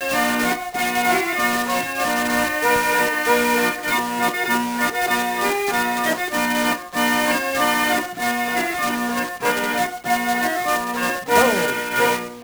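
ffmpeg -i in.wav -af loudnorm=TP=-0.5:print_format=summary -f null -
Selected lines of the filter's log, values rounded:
Input Integrated:    -19.6 LUFS
Input True Peak:      -5.3 dBTP
Input LRA:             1.5 LU
Input Threshold:     -29.6 LUFS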